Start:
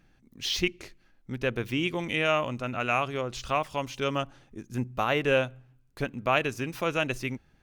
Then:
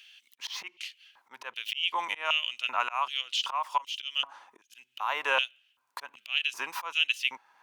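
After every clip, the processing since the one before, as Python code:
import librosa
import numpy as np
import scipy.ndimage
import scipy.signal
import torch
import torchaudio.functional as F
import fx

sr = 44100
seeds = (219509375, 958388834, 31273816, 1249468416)

y = fx.auto_swell(x, sr, attack_ms=309.0)
y = fx.filter_lfo_highpass(y, sr, shape='square', hz=1.3, low_hz=970.0, high_hz=3000.0, q=7.7)
y = fx.band_squash(y, sr, depth_pct=40)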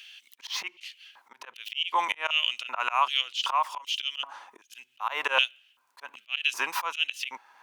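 y = fx.low_shelf(x, sr, hz=120.0, db=-12.0)
y = fx.auto_swell(y, sr, attack_ms=131.0)
y = y * 10.0 ** (6.0 / 20.0)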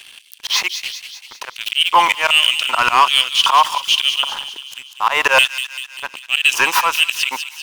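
y = fx.leveller(x, sr, passes=3)
y = fx.echo_wet_highpass(y, sr, ms=195, feedback_pct=57, hz=3000.0, wet_db=-7)
y = y * 10.0 ** (4.5 / 20.0)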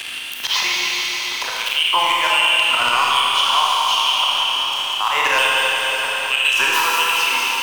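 y = fx.rev_schroeder(x, sr, rt60_s=2.9, comb_ms=25, drr_db=-5.0)
y = fx.band_squash(y, sr, depth_pct=70)
y = y * 10.0 ** (-7.5 / 20.0)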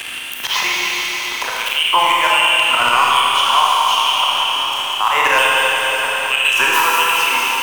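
y = fx.peak_eq(x, sr, hz=4400.0, db=-8.0, octaves=1.0)
y = y * 10.0 ** (4.5 / 20.0)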